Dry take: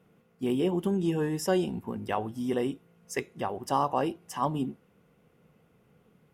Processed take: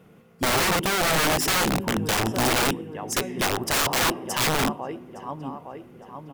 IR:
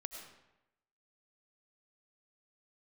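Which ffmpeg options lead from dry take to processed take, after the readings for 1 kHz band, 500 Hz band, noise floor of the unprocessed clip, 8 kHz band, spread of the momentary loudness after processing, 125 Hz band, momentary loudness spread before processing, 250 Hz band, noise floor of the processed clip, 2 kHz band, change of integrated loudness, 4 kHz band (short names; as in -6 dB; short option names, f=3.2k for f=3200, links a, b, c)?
+6.5 dB, +3.0 dB, -65 dBFS, +18.5 dB, 17 LU, +5.0 dB, 9 LU, +2.0 dB, -52 dBFS, +17.5 dB, +7.5 dB, +18.5 dB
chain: -filter_complex "[0:a]asplit=2[a][b];[b]adelay=861,lowpass=f=3.5k:p=1,volume=-16dB,asplit=2[c][d];[d]adelay=861,lowpass=f=3.5k:p=1,volume=0.51,asplit=2[e][f];[f]adelay=861,lowpass=f=3.5k:p=1,volume=0.51,asplit=2[g][h];[h]adelay=861,lowpass=f=3.5k:p=1,volume=0.51,asplit=2[i][j];[j]adelay=861,lowpass=f=3.5k:p=1,volume=0.51[k];[a][c][e][g][i][k]amix=inputs=6:normalize=0,asplit=2[l][m];[1:a]atrim=start_sample=2205[n];[m][n]afir=irnorm=-1:irlink=0,volume=-11.5dB[o];[l][o]amix=inputs=2:normalize=0,aeval=exprs='(mod(20*val(0)+1,2)-1)/20':c=same,volume=9dB"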